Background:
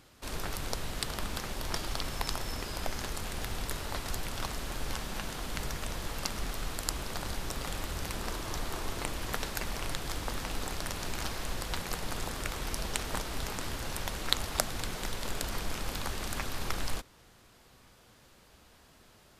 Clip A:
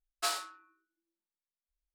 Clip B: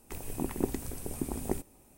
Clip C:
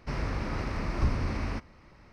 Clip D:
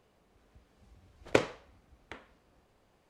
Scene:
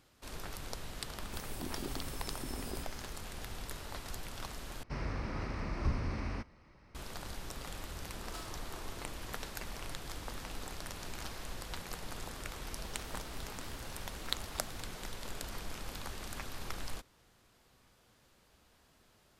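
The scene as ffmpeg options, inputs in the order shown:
ffmpeg -i bed.wav -i cue0.wav -i cue1.wav -i cue2.wav -filter_complex "[2:a]asplit=2[link_01][link_02];[0:a]volume=-7.5dB[link_03];[link_01]alimiter=level_in=0.5dB:limit=-24dB:level=0:latency=1:release=25,volume=-0.5dB[link_04];[1:a]alimiter=limit=-24dB:level=0:latency=1:release=324[link_05];[link_02]acompressor=threshold=-51dB:ratio=6:attack=3.2:release=140:knee=1:detection=peak[link_06];[link_03]asplit=2[link_07][link_08];[link_07]atrim=end=4.834[link_09];[3:a]atrim=end=2.12,asetpts=PTS-STARTPTS,volume=-6dB[link_10];[link_08]atrim=start=6.946[link_11];[link_04]atrim=end=1.97,asetpts=PTS-STARTPTS,volume=-6dB,afade=type=in:duration=0.004:curve=hsin,afade=type=out:start_time=1.966:duration=0.004:curve=hsin,adelay=1220[link_12];[link_05]atrim=end=1.94,asetpts=PTS-STARTPTS,volume=-13.5dB,afade=type=in:duration=0.004:curve=hsin,afade=type=out:start_time=1.936:duration=0.004:curve=hsin,adelay=8110[link_13];[link_06]atrim=end=1.97,asetpts=PTS-STARTPTS,volume=-4.5dB,afade=type=in:duration=0.004:curve=hsin,afade=type=out:start_time=1.966:duration=0.004:curve=hsin,adelay=12850[link_14];[link_09][link_10]acrossfade=duration=0.004:curve1=hsin:curve2=hsin[link_15];[link_15][link_11]acrossfade=duration=0.004:curve1=hsin:curve2=hsin[link_16];[link_16][link_12][link_13][link_14]amix=inputs=4:normalize=0" out.wav

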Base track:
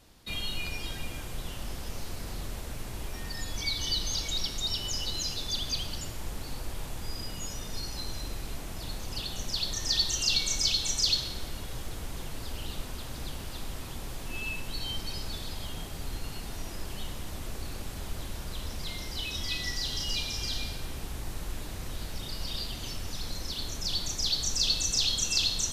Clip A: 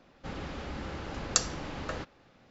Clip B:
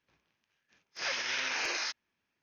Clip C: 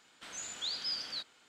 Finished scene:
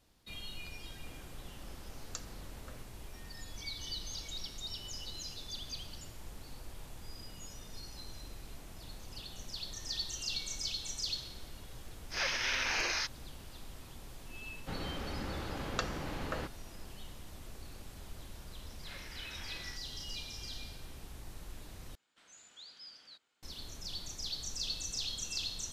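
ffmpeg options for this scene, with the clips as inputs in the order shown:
ffmpeg -i bed.wav -i cue0.wav -i cue1.wav -i cue2.wav -filter_complex "[1:a]asplit=2[link_01][link_02];[2:a]asplit=2[link_03][link_04];[0:a]volume=-11dB[link_05];[link_02]acrossover=split=3700[link_06][link_07];[link_07]acompressor=threshold=-53dB:ratio=4:attack=1:release=60[link_08];[link_06][link_08]amix=inputs=2:normalize=0[link_09];[link_04]lowpass=3500[link_10];[link_05]asplit=2[link_11][link_12];[link_11]atrim=end=21.954[link_13];[3:a]atrim=end=1.48,asetpts=PTS-STARTPTS,volume=-15.5dB[link_14];[link_12]atrim=start=23.426[link_15];[link_01]atrim=end=2.5,asetpts=PTS-STARTPTS,volume=-18dB,afade=type=in:duration=0.004:curve=hsin,afade=type=out:start_time=2.496:duration=0.004:curve=hsin,adelay=790[link_16];[link_03]atrim=end=2.42,asetpts=PTS-STARTPTS,afade=type=in:duration=0.004:curve=hsin,afade=type=out:start_time=2.416:duration=0.004:curve=hsin,adelay=11150[link_17];[link_09]atrim=end=2.5,asetpts=PTS-STARTPTS,volume=-1.5dB,afade=type=in:duration=0.004:curve=hsin,afade=type=out:start_time=2.496:duration=0.004:curve=hsin,adelay=14430[link_18];[link_10]atrim=end=2.42,asetpts=PTS-STARTPTS,volume=-16dB,afade=type=in:duration=0.004:curve=hsin,afade=type=out:start_time=2.416:duration=0.004:curve=hsin,adelay=17860[link_19];[link_13][link_14]acrossfade=duration=0.004:curve1=hsin:curve2=hsin[link_20];[link_20][link_15]acrossfade=duration=0.004:curve1=hsin:curve2=hsin[link_21];[link_21][link_16][link_17][link_18][link_19]amix=inputs=5:normalize=0" out.wav

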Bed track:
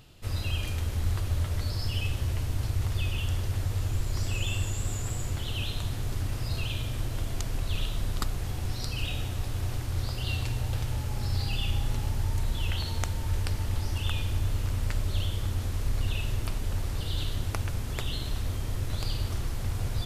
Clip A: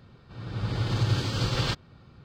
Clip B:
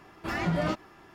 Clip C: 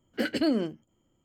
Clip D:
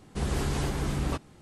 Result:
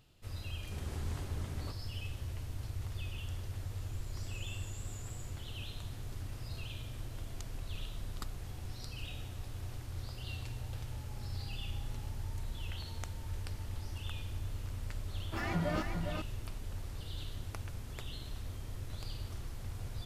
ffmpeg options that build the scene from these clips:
ffmpeg -i bed.wav -i cue0.wav -i cue1.wav -i cue2.wav -i cue3.wav -filter_complex "[0:a]volume=-11.5dB[link_01];[2:a]aecho=1:1:407:0.531[link_02];[4:a]atrim=end=1.41,asetpts=PTS-STARTPTS,volume=-16dB,afade=type=in:duration=0.004:curve=hsin,afade=type=out:start_time=1.406:duration=0.004:curve=hsin,adelay=550[link_03];[link_02]atrim=end=1.14,asetpts=PTS-STARTPTS,volume=-6.5dB,afade=type=in:duration=0.004:curve=hsin,afade=type=out:start_time=1.136:duration=0.004:curve=hsin,adelay=665028S[link_04];[link_01][link_03][link_04]amix=inputs=3:normalize=0" out.wav

